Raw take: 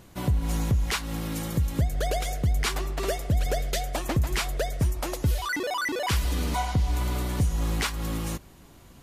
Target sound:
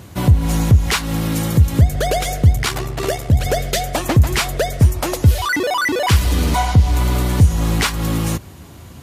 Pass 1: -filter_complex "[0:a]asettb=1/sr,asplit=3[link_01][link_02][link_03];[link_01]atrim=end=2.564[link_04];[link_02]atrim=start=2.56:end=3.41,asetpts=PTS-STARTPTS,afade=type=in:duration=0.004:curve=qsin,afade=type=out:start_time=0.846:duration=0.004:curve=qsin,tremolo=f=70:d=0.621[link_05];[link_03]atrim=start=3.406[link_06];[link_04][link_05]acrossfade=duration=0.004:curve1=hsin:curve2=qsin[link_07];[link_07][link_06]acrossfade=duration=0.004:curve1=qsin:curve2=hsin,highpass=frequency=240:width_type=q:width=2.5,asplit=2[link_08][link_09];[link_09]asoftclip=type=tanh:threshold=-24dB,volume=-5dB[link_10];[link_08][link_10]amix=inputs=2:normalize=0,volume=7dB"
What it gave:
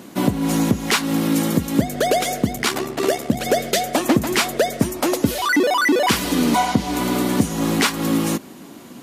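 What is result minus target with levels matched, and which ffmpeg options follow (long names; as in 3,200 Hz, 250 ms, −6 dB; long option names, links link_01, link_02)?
125 Hz band −9.5 dB
-filter_complex "[0:a]asettb=1/sr,asplit=3[link_01][link_02][link_03];[link_01]atrim=end=2.564[link_04];[link_02]atrim=start=2.56:end=3.41,asetpts=PTS-STARTPTS,afade=type=in:duration=0.004:curve=qsin,afade=type=out:start_time=0.846:duration=0.004:curve=qsin,tremolo=f=70:d=0.621[link_05];[link_03]atrim=start=3.406[link_06];[link_04][link_05]acrossfade=duration=0.004:curve1=hsin:curve2=qsin[link_07];[link_07][link_06]acrossfade=duration=0.004:curve1=qsin:curve2=hsin,highpass=frequency=83:width_type=q:width=2.5,asplit=2[link_08][link_09];[link_09]asoftclip=type=tanh:threshold=-24dB,volume=-5dB[link_10];[link_08][link_10]amix=inputs=2:normalize=0,volume=7dB"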